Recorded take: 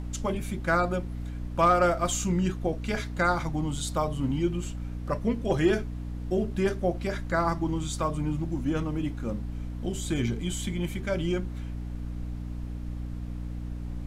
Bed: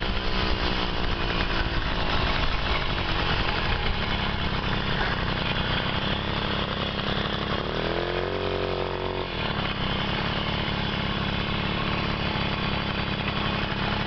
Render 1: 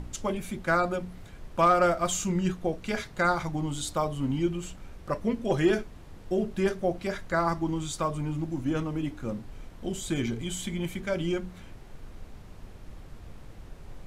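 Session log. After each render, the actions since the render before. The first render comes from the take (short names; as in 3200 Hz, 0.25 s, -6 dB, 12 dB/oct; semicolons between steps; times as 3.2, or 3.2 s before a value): de-hum 60 Hz, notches 5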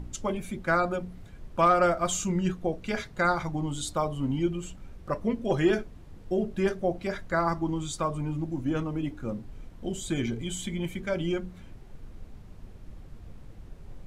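denoiser 6 dB, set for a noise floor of -47 dBFS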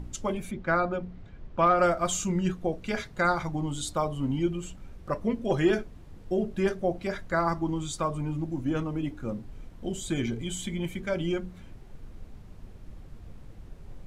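0.51–1.79 air absorption 150 m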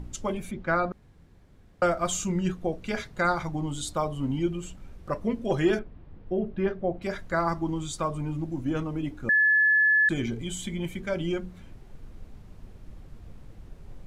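0.92–1.82 room tone; 5.79–7.02 air absorption 330 m; 9.29–10.09 bleep 1720 Hz -17.5 dBFS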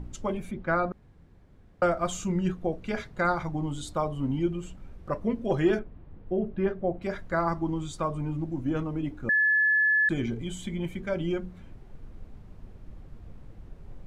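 high shelf 3100 Hz -8.5 dB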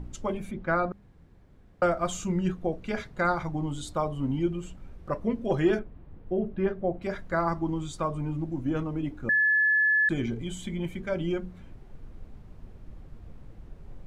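de-hum 99.75 Hz, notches 2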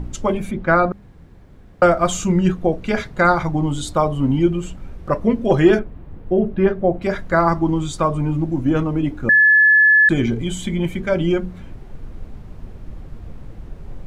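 gain +11 dB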